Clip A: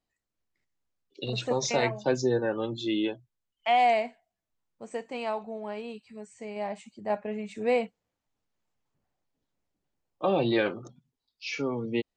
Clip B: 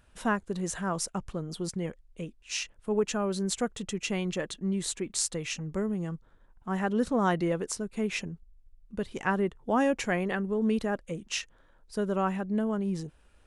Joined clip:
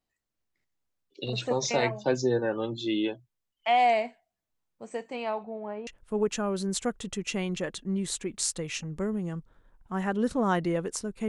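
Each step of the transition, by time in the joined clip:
clip A
0:05.15–0:05.87: low-pass filter 5,400 Hz → 1,200 Hz
0:05.87: continue with clip B from 0:02.63

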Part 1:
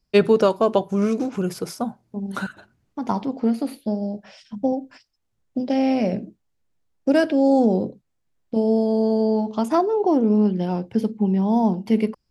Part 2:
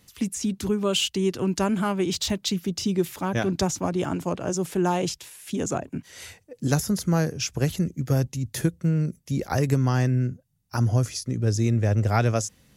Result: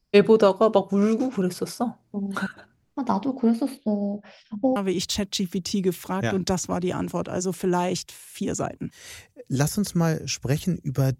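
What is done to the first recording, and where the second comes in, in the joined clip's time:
part 1
0:03.77–0:04.76: high-frequency loss of the air 140 metres
0:04.76: continue with part 2 from 0:01.88

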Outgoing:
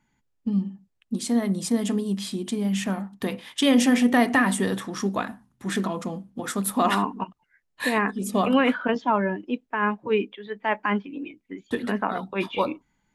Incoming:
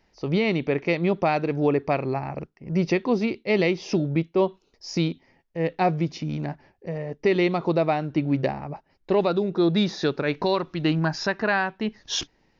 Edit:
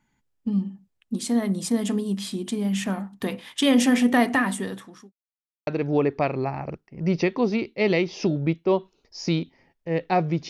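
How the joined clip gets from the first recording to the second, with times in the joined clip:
outgoing
0:04.21–0:05.12: fade out linear
0:05.12–0:05.67: silence
0:05.67: continue with incoming from 0:01.36

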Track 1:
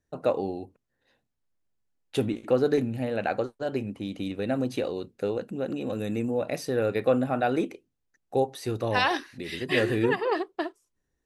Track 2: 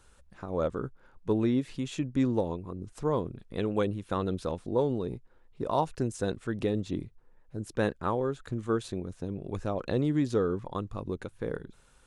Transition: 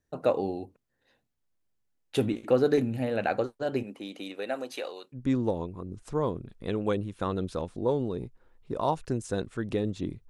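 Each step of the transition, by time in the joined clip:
track 1
0:03.82–0:05.18: high-pass filter 290 Hz → 930 Hz
0:05.15: continue with track 2 from 0:02.05, crossfade 0.06 s

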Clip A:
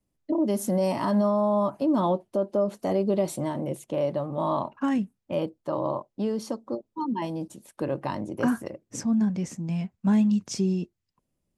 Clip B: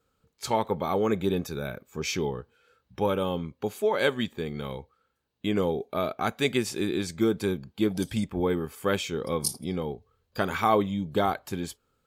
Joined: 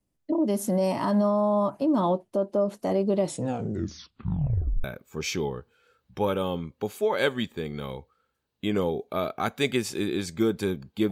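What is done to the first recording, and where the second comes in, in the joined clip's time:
clip A
0:03.21: tape stop 1.63 s
0:04.84: continue with clip B from 0:01.65

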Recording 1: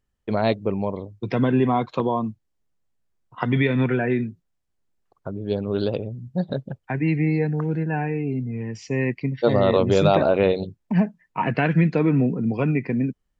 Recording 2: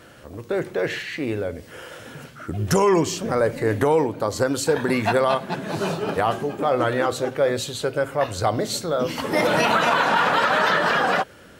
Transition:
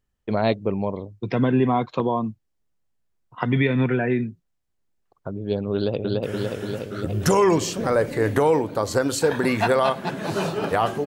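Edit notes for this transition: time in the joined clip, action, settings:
recording 1
0:05.75–0:06.23: delay throw 290 ms, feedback 75%, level −1 dB
0:06.23: continue with recording 2 from 0:01.68

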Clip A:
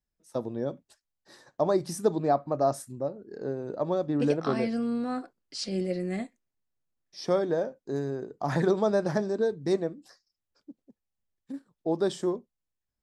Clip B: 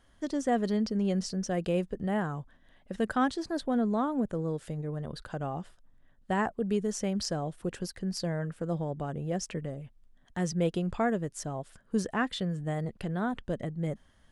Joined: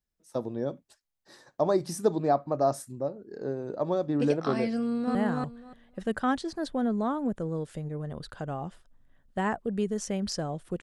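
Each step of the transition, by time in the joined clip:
clip A
0:04.78–0:05.15: delay throw 290 ms, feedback 15%, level −0.5 dB
0:05.15: continue with clip B from 0:02.08

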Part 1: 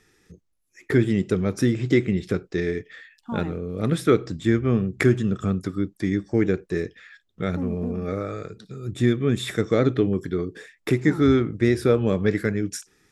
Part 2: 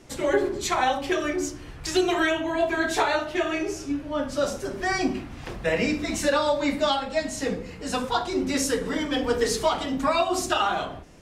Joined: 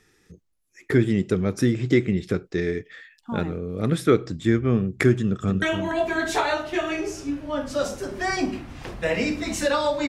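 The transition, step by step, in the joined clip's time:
part 1
0:05.18–0:05.62: delay throw 290 ms, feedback 15%, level −8 dB
0:05.62: continue with part 2 from 0:02.24

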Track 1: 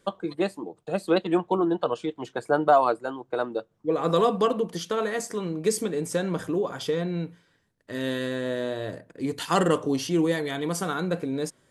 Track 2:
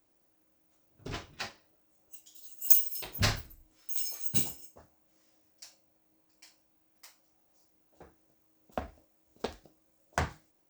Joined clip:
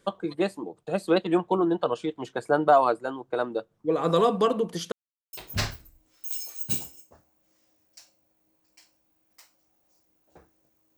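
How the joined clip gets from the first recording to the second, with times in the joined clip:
track 1
0:04.92–0:05.33: silence
0:05.33: continue with track 2 from 0:02.98

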